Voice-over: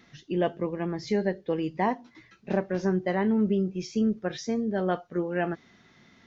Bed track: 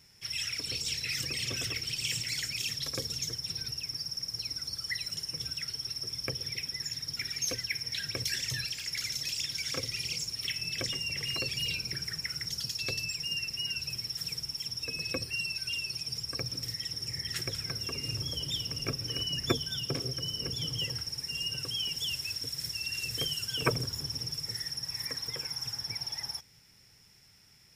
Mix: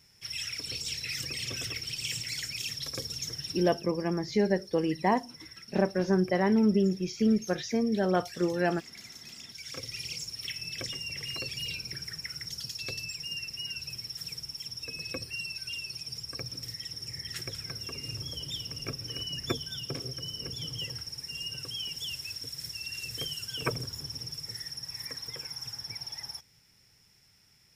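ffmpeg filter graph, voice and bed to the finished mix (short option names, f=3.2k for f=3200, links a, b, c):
-filter_complex "[0:a]adelay=3250,volume=0.5dB[a];[1:a]volume=8dB,afade=t=out:st=3.51:d=0.39:silence=0.281838,afade=t=in:st=9.46:d=0.52:silence=0.334965[b];[a][b]amix=inputs=2:normalize=0"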